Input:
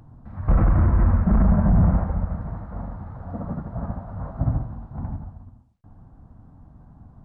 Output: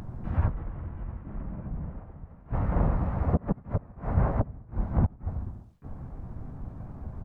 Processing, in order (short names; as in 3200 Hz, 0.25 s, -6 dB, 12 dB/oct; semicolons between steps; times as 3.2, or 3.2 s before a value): flipped gate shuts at -21 dBFS, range -27 dB; harmoniser -7 st -3 dB, -3 st -2 dB, +7 st -7 dB; gain +4.5 dB